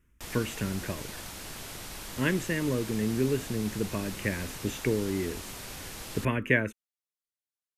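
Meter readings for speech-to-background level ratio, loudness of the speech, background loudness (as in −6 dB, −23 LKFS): 9.0 dB, −31.0 LKFS, −40.0 LKFS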